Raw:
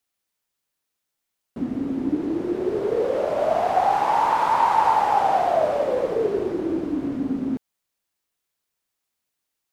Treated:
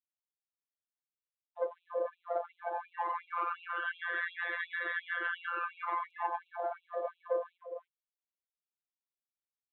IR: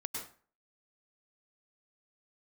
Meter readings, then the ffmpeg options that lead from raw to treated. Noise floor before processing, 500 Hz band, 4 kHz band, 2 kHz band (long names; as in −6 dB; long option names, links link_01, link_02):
−81 dBFS, −15.5 dB, −10.5 dB, 0.0 dB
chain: -filter_complex "[0:a]acrossover=split=600|790[link_01][link_02][link_03];[link_03]asoftclip=type=hard:threshold=-23.5dB[link_04];[link_01][link_02][link_04]amix=inputs=3:normalize=0,highshelf=frequency=2100:gain=-11.5,aexciter=amount=12.1:drive=6.8:freq=3100,highpass=64,alimiter=limit=-19.5dB:level=0:latency=1:release=314,equalizer=frequency=2900:width=0.36:gain=-8.5,aresample=8000,aeval=exprs='abs(val(0))':channel_layout=same,aresample=44100,afftfilt=real='hypot(re,im)*cos(PI*b)':imag='0':win_size=1024:overlap=0.75,asplit=2[link_05][link_06];[link_06]adelay=300,highpass=300,lowpass=3400,asoftclip=type=hard:threshold=-28.5dB,volume=-7dB[link_07];[link_05][link_07]amix=inputs=2:normalize=0,afftdn=noise_reduction=22:noise_floor=-43,afftfilt=real='re*gte(b*sr/1024,340*pow(2400/340,0.5+0.5*sin(2*PI*2.8*pts/sr)))':imag='im*gte(b*sr/1024,340*pow(2400/340,0.5+0.5*sin(2*PI*2.8*pts/sr)))':win_size=1024:overlap=0.75,volume=6dB"